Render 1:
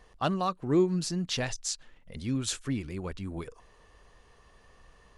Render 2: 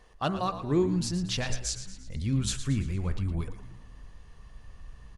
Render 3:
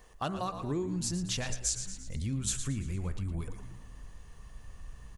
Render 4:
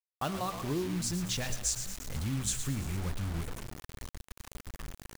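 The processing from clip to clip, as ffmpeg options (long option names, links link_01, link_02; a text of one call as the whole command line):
ffmpeg -i in.wav -filter_complex "[0:a]asubboost=boost=5:cutoff=170,bandreject=frequency=62.77:width_type=h:width=4,bandreject=frequency=125.54:width_type=h:width=4,bandreject=frequency=188.31:width_type=h:width=4,bandreject=frequency=251.08:width_type=h:width=4,bandreject=frequency=313.85:width_type=h:width=4,bandreject=frequency=376.62:width_type=h:width=4,bandreject=frequency=439.39:width_type=h:width=4,bandreject=frequency=502.16:width_type=h:width=4,bandreject=frequency=564.93:width_type=h:width=4,bandreject=frequency=627.7:width_type=h:width=4,bandreject=frequency=690.47:width_type=h:width=4,bandreject=frequency=753.24:width_type=h:width=4,bandreject=frequency=816.01:width_type=h:width=4,bandreject=frequency=878.78:width_type=h:width=4,bandreject=frequency=941.55:width_type=h:width=4,bandreject=frequency=1004.32:width_type=h:width=4,bandreject=frequency=1067.09:width_type=h:width=4,bandreject=frequency=1129.86:width_type=h:width=4,bandreject=frequency=1192.63:width_type=h:width=4,bandreject=frequency=1255.4:width_type=h:width=4,bandreject=frequency=1318.17:width_type=h:width=4,bandreject=frequency=1380.94:width_type=h:width=4,bandreject=frequency=1443.71:width_type=h:width=4,bandreject=frequency=1506.48:width_type=h:width=4,bandreject=frequency=1569.25:width_type=h:width=4,bandreject=frequency=1632.02:width_type=h:width=4,bandreject=frequency=1694.79:width_type=h:width=4,bandreject=frequency=1757.56:width_type=h:width=4,bandreject=frequency=1820.33:width_type=h:width=4,bandreject=frequency=1883.1:width_type=h:width=4,bandreject=frequency=1945.87:width_type=h:width=4,bandreject=frequency=2008.64:width_type=h:width=4,bandreject=frequency=2071.41:width_type=h:width=4,bandreject=frequency=2134.18:width_type=h:width=4,bandreject=frequency=2196.95:width_type=h:width=4,bandreject=frequency=2259.72:width_type=h:width=4,asplit=6[link_01][link_02][link_03][link_04][link_05][link_06];[link_02]adelay=114,afreqshift=-67,volume=-11.5dB[link_07];[link_03]adelay=228,afreqshift=-134,volume=-17.7dB[link_08];[link_04]adelay=342,afreqshift=-201,volume=-23.9dB[link_09];[link_05]adelay=456,afreqshift=-268,volume=-30.1dB[link_10];[link_06]adelay=570,afreqshift=-335,volume=-36.3dB[link_11];[link_01][link_07][link_08][link_09][link_10][link_11]amix=inputs=6:normalize=0" out.wav
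ffmpeg -i in.wav -af "acompressor=threshold=-31dB:ratio=4,aexciter=amount=3.4:drive=1.4:freq=6400" out.wav
ffmpeg -i in.wav -af "acrusher=bits=6:mix=0:aa=0.000001" out.wav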